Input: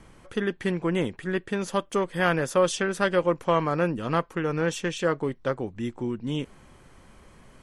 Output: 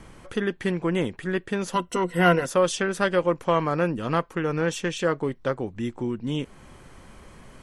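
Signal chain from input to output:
0:01.73–0:02.46: EQ curve with evenly spaced ripples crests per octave 2, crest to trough 15 dB
in parallel at −2.5 dB: downward compressor, threshold −40 dBFS, peak gain reduction 23.5 dB

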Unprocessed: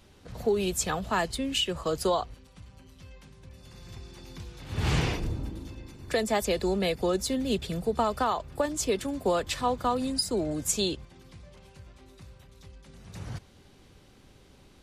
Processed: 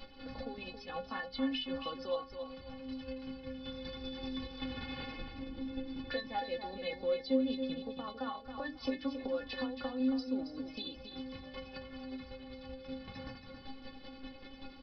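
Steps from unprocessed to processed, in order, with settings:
square-wave tremolo 5.2 Hz, depth 60%, duty 25%
in parallel at −2.5 dB: brickwall limiter −27 dBFS, peak gain reduction 12.5 dB
on the sum: downward compressor 12 to 1, threshold −41 dBFS, peak gain reduction 20.5 dB
mains-hum notches 50/100/150/200/250 Hz
stiff-string resonator 260 Hz, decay 0.22 s, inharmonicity 0.008
on a send: repeating echo 274 ms, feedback 30%, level −8 dB
on the sum: downsampling to 11,025 Hz
level +18 dB

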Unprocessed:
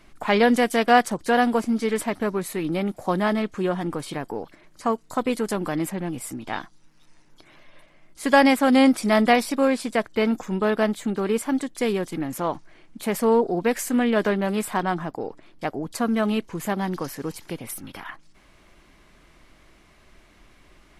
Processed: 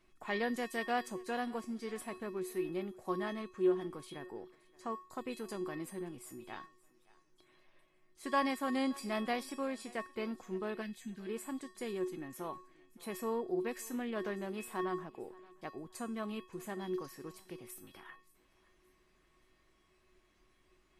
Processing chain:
tuned comb filter 370 Hz, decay 0.38 s, harmonics odd, mix 90%
gain on a spectral selection 0:10.82–0:11.27, 260–1,500 Hz −15 dB
feedback echo with a high-pass in the loop 574 ms, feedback 34%, high-pass 290 Hz, level −22 dB
level +1 dB

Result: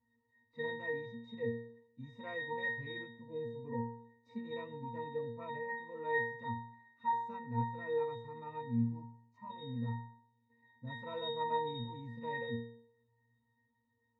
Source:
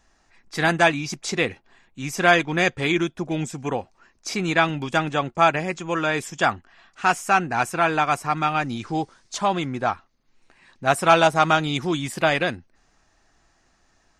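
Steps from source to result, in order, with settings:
0:08.61–0:09.50: phaser with its sweep stopped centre 2,500 Hz, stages 8
resonances in every octave A#, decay 0.61 s
harmonic and percussive parts rebalanced percussive −16 dB
on a send: delay with a low-pass on its return 118 ms, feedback 33%, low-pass 1,500 Hz, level −22 dB
on the sum: level +6 dB

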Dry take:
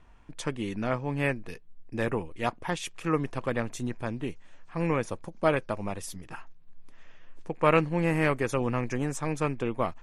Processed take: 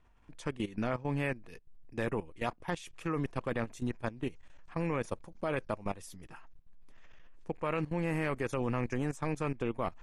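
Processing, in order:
output level in coarse steps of 16 dB

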